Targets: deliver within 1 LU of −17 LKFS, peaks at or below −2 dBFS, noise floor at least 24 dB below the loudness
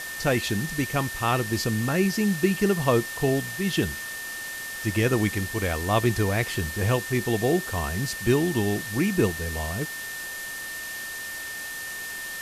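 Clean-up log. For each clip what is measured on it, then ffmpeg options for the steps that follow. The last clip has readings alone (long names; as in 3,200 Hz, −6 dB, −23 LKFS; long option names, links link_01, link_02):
interfering tone 1,800 Hz; level of the tone −34 dBFS; background noise floor −35 dBFS; target noise floor −50 dBFS; integrated loudness −26.0 LKFS; sample peak −7.5 dBFS; target loudness −17.0 LKFS
→ -af "bandreject=frequency=1800:width=30"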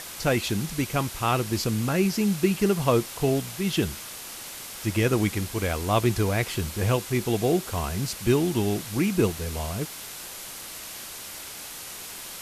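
interfering tone none found; background noise floor −39 dBFS; target noise floor −51 dBFS
→ -af "afftdn=noise_reduction=12:noise_floor=-39"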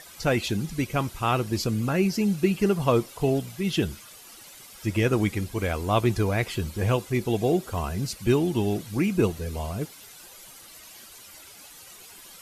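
background noise floor −47 dBFS; target noise floor −50 dBFS
→ -af "afftdn=noise_reduction=6:noise_floor=-47"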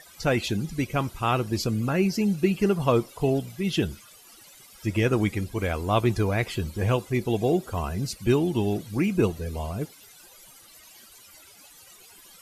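background noise floor −51 dBFS; integrated loudness −26.0 LKFS; sample peak −8.0 dBFS; target loudness −17.0 LKFS
→ -af "volume=9dB,alimiter=limit=-2dB:level=0:latency=1"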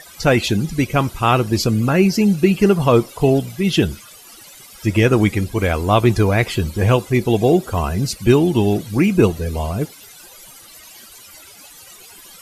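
integrated loudness −17.0 LKFS; sample peak −2.0 dBFS; background noise floor −42 dBFS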